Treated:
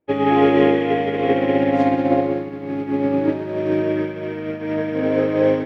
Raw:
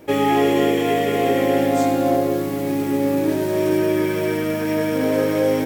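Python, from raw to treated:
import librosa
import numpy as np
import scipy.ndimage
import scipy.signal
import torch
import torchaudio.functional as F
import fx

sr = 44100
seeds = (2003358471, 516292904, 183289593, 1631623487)

p1 = fx.air_absorb(x, sr, metres=310.0)
p2 = p1 + fx.echo_banded(p1, sr, ms=180, feedback_pct=63, hz=2100.0, wet_db=-4.0, dry=0)
p3 = fx.upward_expand(p2, sr, threshold_db=-39.0, expansion=2.5)
y = F.gain(torch.from_numpy(p3), 4.5).numpy()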